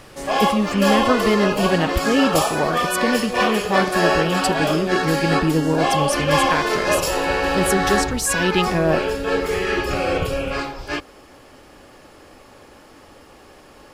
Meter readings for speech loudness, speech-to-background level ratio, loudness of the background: -22.0 LUFS, -1.0 dB, -21.0 LUFS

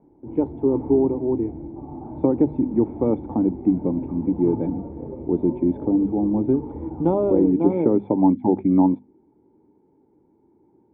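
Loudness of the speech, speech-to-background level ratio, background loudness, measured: -21.5 LUFS, 13.5 dB, -35.0 LUFS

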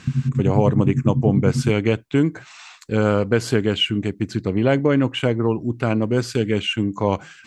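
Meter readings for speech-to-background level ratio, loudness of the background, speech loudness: 1.5 dB, -22.5 LUFS, -21.0 LUFS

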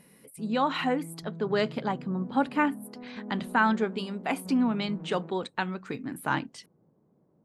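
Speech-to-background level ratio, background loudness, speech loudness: 13.5 dB, -43.0 LUFS, -29.5 LUFS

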